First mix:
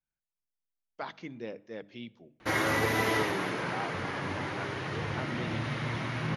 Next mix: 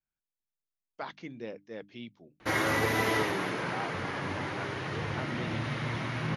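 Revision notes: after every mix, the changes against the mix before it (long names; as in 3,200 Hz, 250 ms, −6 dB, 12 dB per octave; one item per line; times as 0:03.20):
reverb: off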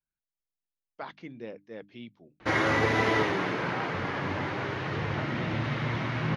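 background +3.5 dB
master: add high-frequency loss of the air 110 metres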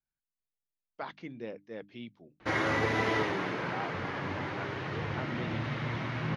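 background −4.0 dB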